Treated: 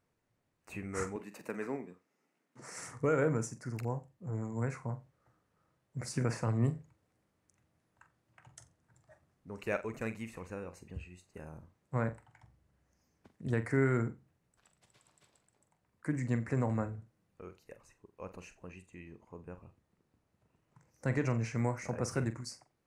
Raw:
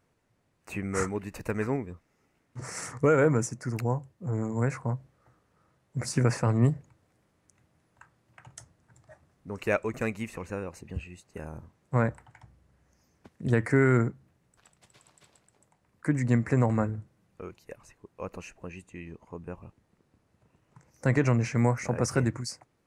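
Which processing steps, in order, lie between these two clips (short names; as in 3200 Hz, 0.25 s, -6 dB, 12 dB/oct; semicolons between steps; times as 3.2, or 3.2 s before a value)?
1.16–2.76 HPF 180 Hz 24 dB/oct; on a send: flutter echo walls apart 7.6 m, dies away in 0.23 s; on the sum: gain -8 dB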